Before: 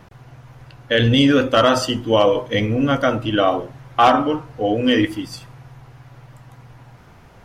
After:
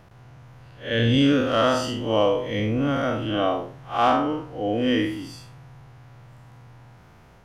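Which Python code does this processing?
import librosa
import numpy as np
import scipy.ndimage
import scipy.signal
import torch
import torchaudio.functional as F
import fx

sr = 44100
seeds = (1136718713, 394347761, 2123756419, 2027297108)

y = fx.spec_blur(x, sr, span_ms=135.0)
y = F.gain(torch.from_numpy(y), -3.0).numpy()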